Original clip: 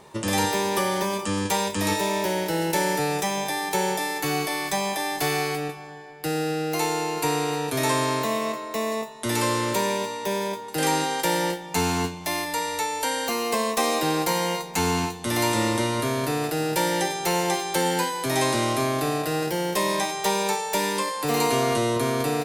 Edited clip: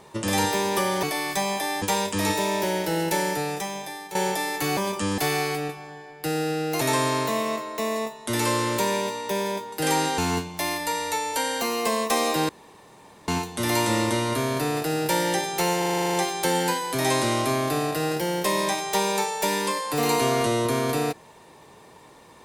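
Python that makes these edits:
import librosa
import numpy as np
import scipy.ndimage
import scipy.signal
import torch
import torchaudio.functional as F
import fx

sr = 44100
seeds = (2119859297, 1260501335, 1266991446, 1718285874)

y = fx.edit(x, sr, fx.swap(start_s=1.03, length_s=0.41, other_s=4.39, other_length_s=0.79),
    fx.fade_out_to(start_s=2.63, length_s=1.14, floor_db=-13.0),
    fx.cut(start_s=6.81, length_s=0.96),
    fx.cut(start_s=11.14, length_s=0.71),
    fx.room_tone_fill(start_s=14.16, length_s=0.79),
    fx.stutter(start_s=17.45, slice_s=0.04, count=10), tone=tone)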